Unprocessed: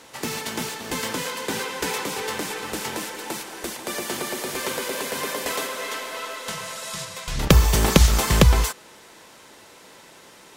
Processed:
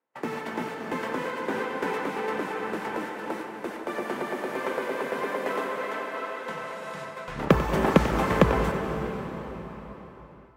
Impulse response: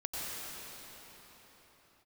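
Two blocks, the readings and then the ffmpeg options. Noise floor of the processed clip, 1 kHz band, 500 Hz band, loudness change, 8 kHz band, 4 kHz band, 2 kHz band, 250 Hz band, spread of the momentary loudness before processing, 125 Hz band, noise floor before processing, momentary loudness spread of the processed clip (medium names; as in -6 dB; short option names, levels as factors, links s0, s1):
-46 dBFS, +0.5 dB, +1.0 dB, -4.5 dB, -20.5 dB, -13.5 dB, -3.0 dB, -1.0 dB, 14 LU, -8.0 dB, -49 dBFS, 14 LU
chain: -filter_complex "[0:a]agate=range=0.02:threshold=0.0158:ratio=16:detection=peak,acrossover=split=160 2100:gain=0.141 1 0.0794[s0][s1][s2];[s0][s1][s2]amix=inputs=3:normalize=0,asplit=2[s3][s4];[1:a]atrim=start_sample=2205,adelay=94[s5];[s4][s5]afir=irnorm=-1:irlink=0,volume=0.335[s6];[s3][s6]amix=inputs=2:normalize=0"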